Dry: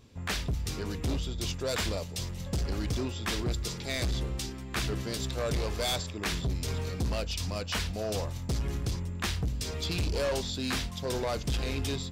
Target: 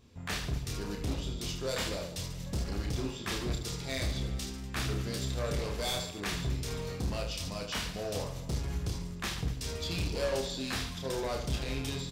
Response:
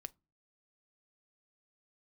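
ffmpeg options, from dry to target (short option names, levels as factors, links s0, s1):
-af "aecho=1:1:30|75|142.5|243.8|395.6:0.631|0.398|0.251|0.158|0.1,volume=0.596"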